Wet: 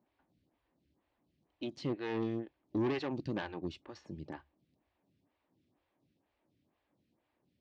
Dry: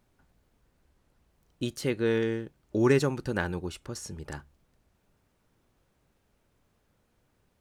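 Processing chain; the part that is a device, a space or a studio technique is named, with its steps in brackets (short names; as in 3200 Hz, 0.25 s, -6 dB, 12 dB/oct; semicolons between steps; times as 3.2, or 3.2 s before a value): vibe pedal into a guitar amplifier (photocell phaser 2.1 Hz; tube stage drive 29 dB, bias 0.6; speaker cabinet 91–4500 Hz, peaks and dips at 300 Hz +7 dB, 450 Hz -6 dB, 1400 Hz -9 dB)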